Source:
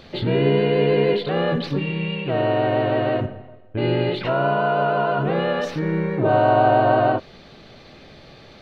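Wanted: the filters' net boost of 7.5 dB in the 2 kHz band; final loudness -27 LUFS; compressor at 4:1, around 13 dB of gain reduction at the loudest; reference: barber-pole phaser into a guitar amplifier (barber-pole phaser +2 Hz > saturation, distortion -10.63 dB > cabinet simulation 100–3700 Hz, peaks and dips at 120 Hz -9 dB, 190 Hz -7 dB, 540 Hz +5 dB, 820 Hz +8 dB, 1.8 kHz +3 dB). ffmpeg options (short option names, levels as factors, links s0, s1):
-filter_complex "[0:a]equalizer=f=2000:t=o:g=8,acompressor=threshold=0.0398:ratio=4,asplit=2[s0][s1];[s1]afreqshift=2[s2];[s0][s2]amix=inputs=2:normalize=1,asoftclip=threshold=0.0237,highpass=100,equalizer=f=120:t=q:w=4:g=-9,equalizer=f=190:t=q:w=4:g=-7,equalizer=f=540:t=q:w=4:g=5,equalizer=f=820:t=q:w=4:g=8,equalizer=f=1800:t=q:w=4:g=3,lowpass=f=3700:w=0.5412,lowpass=f=3700:w=1.3066,volume=2.66"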